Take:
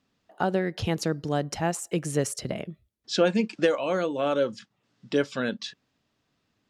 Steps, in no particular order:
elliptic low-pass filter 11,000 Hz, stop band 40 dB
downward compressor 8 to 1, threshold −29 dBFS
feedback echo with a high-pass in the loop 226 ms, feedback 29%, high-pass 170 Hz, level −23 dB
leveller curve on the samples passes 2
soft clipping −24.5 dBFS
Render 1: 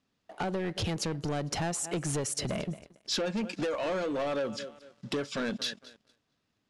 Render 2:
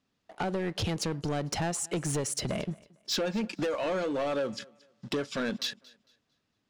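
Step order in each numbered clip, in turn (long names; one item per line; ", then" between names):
feedback echo with a high-pass in the loop, then downward compressor, then soft clipping, then leveller curve on the samples, then elliptic low-pass filter
downward compressor, then leveller curve on the samples, then elliptic low-pass filter, then soft clipping, then feedback echo with a high-pass in the loop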